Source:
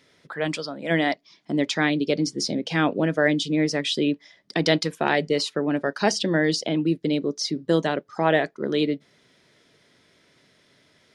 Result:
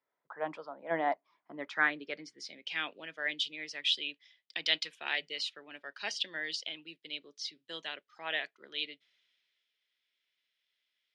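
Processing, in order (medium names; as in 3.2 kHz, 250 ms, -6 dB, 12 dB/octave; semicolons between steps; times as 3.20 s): band-pass sweep 930 Hz -> 2.9 kHz, 1.19–2.86 s; three bands expanded up and down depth 40%; trim -2 dB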